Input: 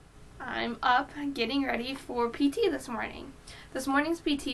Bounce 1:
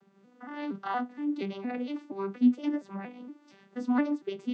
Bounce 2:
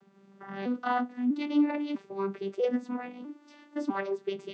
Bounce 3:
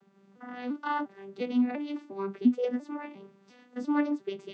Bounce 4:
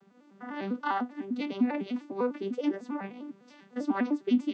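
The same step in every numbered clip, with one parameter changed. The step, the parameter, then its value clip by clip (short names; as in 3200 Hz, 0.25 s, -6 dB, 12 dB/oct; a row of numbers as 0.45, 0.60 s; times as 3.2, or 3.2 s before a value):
arpeggiated vocoder, a note every: 0.234, 0.648, 0.349, 0.1 s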